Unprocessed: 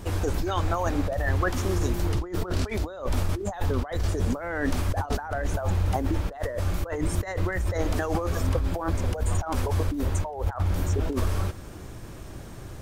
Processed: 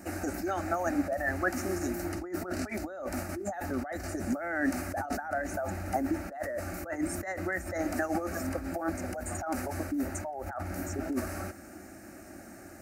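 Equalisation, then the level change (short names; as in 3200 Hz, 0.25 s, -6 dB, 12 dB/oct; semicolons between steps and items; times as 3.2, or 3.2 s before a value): HPF 140 Hz 12 dB/oct; fixed phaser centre 680 Hz, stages 8; 0.0 dB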